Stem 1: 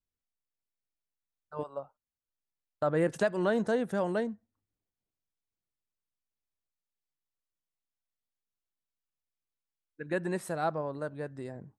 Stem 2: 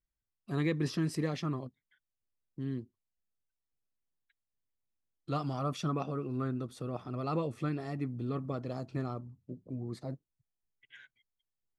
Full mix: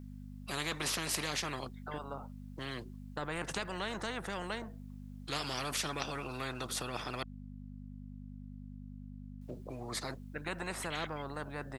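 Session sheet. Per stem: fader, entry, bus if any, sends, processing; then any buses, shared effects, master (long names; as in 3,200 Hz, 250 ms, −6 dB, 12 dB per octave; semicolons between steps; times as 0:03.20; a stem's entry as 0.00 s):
−7.0 dB, 0.35 s, no send, spectral tilt −3.5 dB per octave
−1.0 dB, 0.00 s, muted 0:07.23–0:09.41, no send, no processing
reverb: not used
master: mains hum 50 Hz, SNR 13 dB; every bin compressed towards the loudest bin 4 to 1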